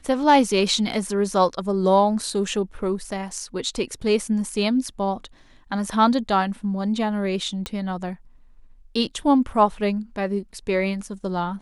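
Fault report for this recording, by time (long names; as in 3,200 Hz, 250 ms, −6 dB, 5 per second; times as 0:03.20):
0:07.66: click −13 dBFS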